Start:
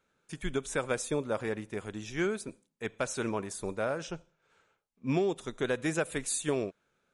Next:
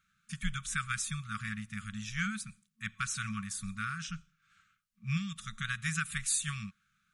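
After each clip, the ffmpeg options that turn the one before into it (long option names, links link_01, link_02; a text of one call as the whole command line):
ffmpeg -i in.wav -af "afftfilt=real='re*(1-between(b*sr/4096,220,1100))':imag='im*(1-between(b*sr/4096,220,1100))':win_size=4096:overlap=0.75,volume=2dB" out.wav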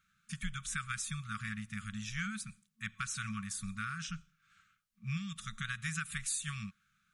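ffmpeg -i in.wav -af "acompressor=threshold=-37dB:ratio=2" out.wav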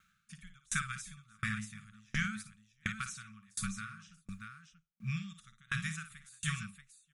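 ffmpeg -i in.wav -filter_complex "[0:a]asplit=2[link_01][link_02];[link_02]aecho=0:1:56|633:0.422|0.422[link_03];[link_01][link_03]amix=inputs=2:normalize=0,aeval=exprs='val(0)*pow(10,-34*if(lt(mod(1.4*n/s,1),2*abs(1.4)/1000),1-mod(1.4*n/s,1)/(2*abs(1.4)/1000),(mod(1.4*n/s,1)-2*abs(1.4)/1000)/(1-2*abs(1.4)/1000))/20)':channel_layout=same,volume=6.5dB" out.wav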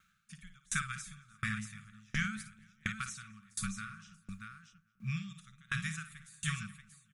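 ffmpeg -i in.wav -filter_complex "[0:a]asplit=2[link_01][link_02];[link_02]adelay=222,lowpass=frequency=2700:poles=1,volume=-21dB,asplit=2[link_03][link_04];[link_04]adelay=222,lowpass=frequency=2700:poles=1,volume=0.41,asplit=2[link_05][link_06];[link_06]adelay=222,lowpass=frequency=2700:poles=1,volume=0.41[link_07];[link_01][link_03][link_05][link_07]amix=inputs=4:normalize=0" out.wav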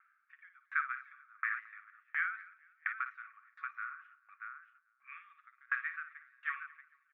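ffmpeg -i in.wav -af "asuperpass=centerf=1300:order=8:qfactor=1,volume=4dB" out.wav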